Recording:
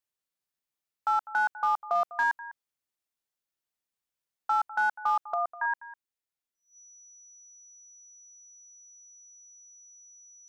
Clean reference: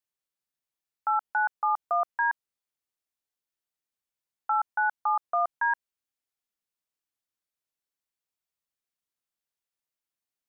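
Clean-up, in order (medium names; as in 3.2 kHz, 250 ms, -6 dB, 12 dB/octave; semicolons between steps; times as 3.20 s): clip repair -19.5 dBFS; band-stop 5.9 kHz, Q 30; inverse comb 201 ms -16.5 dB; trim 0 dB, from 5.34 s +3.5 dB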